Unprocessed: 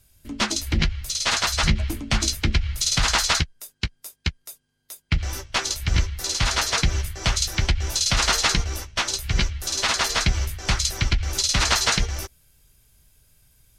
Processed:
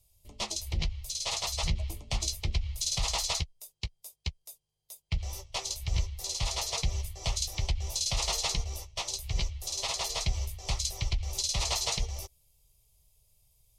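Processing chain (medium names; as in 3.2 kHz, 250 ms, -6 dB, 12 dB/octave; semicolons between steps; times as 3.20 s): static phaser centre 640 Hz, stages 4; trim -7.5 dB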